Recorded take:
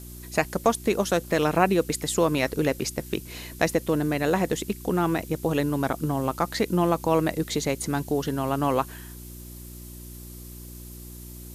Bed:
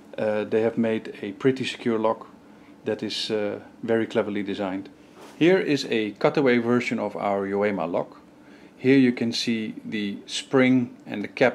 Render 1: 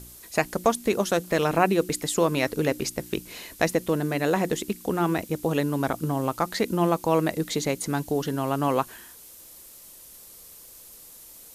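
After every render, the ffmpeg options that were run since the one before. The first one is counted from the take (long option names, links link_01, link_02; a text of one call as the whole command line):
ffmpeg -i in.wav -af "bandreject=frequency=60:width_type=h:width=4,bandreject=frequency=120:width_type=h:width=4,bandreject=frequency=180:width_type=h:width=4,bandreject=frequency=240:width_type=h:width=4,bandreject=frequency=300:width_type=h:width=4,bandreject=frequency=360:width_type=h:width=4" out.wav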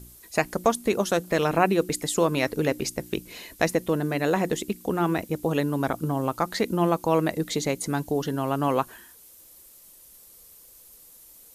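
ffmpeg -i in.wav -af "afftdn=noise_reduction=6:noise_floor=-48" out.wav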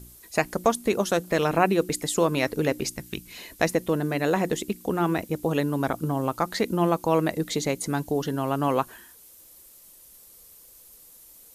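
ffmpeg -i in.wav -filter_complex "[0:a]asettb=1/sr,asplit=3[link_01][link_02][link_03];[link_01]atrim=end=2.964[link_04];[link_02]atrim=start=2.96:end=3.38,asetpts=PTS-STARTPTS,afade=type=in:duration=0.004:curve=qsin,afade=type=out:start_time=0.416:duration=0.004:curve=qsin,equalizer=frequency=490:width=0.93:gain=-11.5[link_05];[link_03]atrim=start=3.376[link_06];[link_04][link_05]acrossfade=duration=0.004:curve1=hsin:curve2=qsin[link_07];[link_07][link_06]acrossfade=duration=0.004:curve1=qsin:curve2=hsin" out.wav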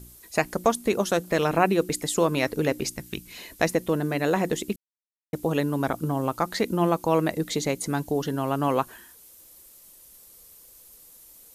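ffmpeg -i in.wav -filter_complex "[0:a]asplit=3[link_01][link_02][link_03];[link_01]atrim=end=4.76,asetpts=PTS-STARTPTS,afade=type=out:start_time=4.756:duration=0.004:curve=hsin[link_04];[link_02]atrim=start=4.76:end=5.33,asetpts=PTS-STARTPTS,volume=0[link_05];[link_03]atrim=start=5.33,asetpts=PTS-STARTPTS,afade=type=in:duration=0.004:curve=hsin[link_06];[link_04][link_05][link_06]concat=n=3:v=0:a=1" out.wav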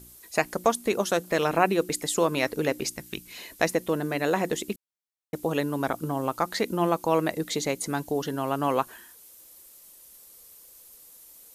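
ffmpeg -i in.wav -af "lowshelf=frequency=210:gain=-7.5" out.wav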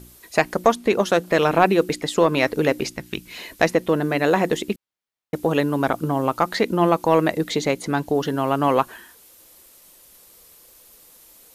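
ffmpeg -i in.wav -filter_complex "[0:a]acrossover=split=4500[link_01][link_02];[link_01]acontrast=79[link_03];[link_02]alimiter=level_in=4dB:limit=-24dB:level=0:latency=1:release=493,volume=-4dB[link_04];[link_03][link_04]amix=inputs=2:normalize=0" out.wav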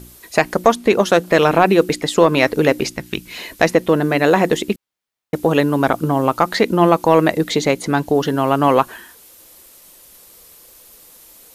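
ffmpeg -i in.wav -af "volume=5dB,alimiter=limit=-1dB:level=0:latency=1" out.wav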